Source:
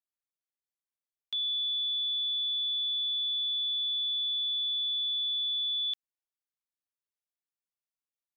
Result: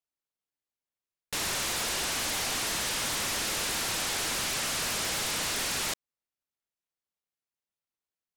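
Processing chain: delay time shaken by noise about 1.2 kHz, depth 0.15 ms

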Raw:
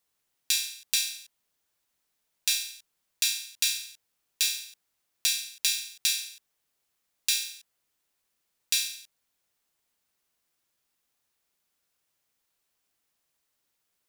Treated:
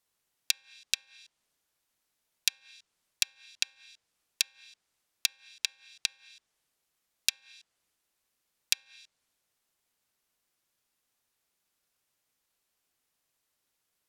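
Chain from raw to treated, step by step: low-pass that closes with the level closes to 560 Hz, closed at -24 dBFS; transient shaper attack +6 dB, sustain +2 dB; trim -1 dB

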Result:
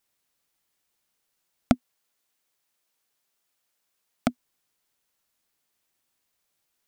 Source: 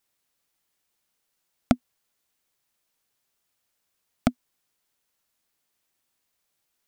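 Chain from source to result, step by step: 1.74–4.30 s: bass shelf 130 Hz -11 dB

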